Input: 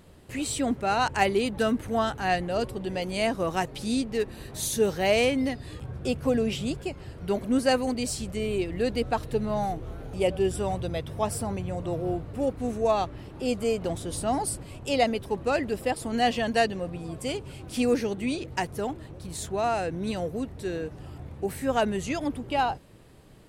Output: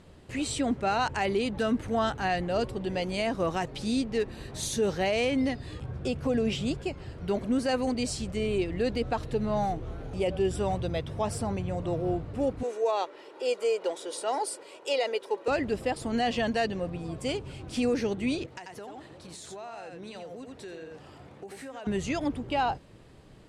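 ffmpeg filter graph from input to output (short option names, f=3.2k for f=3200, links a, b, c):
-filter_complex "[0:a]asettb=1/sr,asplit=3[a][b][c];[a]atrim=end=12.634[d];[b]atrim=start=12.63:end=15.48,asetpts=PTS-STARTPTS,afade=t=in:d=0.004:c=qsin,afade=t=out:st=2.846:d=0.004:c=qsin,highpass=f=370:w=0.5412,highpass=f=370:w=1.3066,aecho=1:1:2.1:0.4,atrim=end_sample=125685[e];[c]atrim=start=15.476[f];[d][e]acrossfade=d=0.004:c1=hsin:c2=qsin[g];[g][f]acrossfade=d=0.004:c1=qsin:c2=hsin,asettb=1/sr,asplit=3[h][i][j];[h]atrim=end=18.464[k];[i]atrim=start=18.46:end=21.87,asetpts=PTS-STARTPTS,afade=t=in:d=0.004:c=qsin,afade=t=out:st=3.406:d=0.004:c=qsin,highpass=f=470:p=1,aecho=1:1:86:0.473,atrim=end_sample=150381,acompressor=threshold=-38dB:ratio=8:attack=3.2:release=140:knee=1:detection=peak[l];[j]atrim=start=21.866[m];[k][l]acrossfade=d=0.004:c1=hsin:c2=qsin[n];[n][m]acrossfade=d=0.004:c1=qsin:c2=hsin,alimiter=limit=-18.5dB:level=0:latency=1:release=49,lowpass=7.5k"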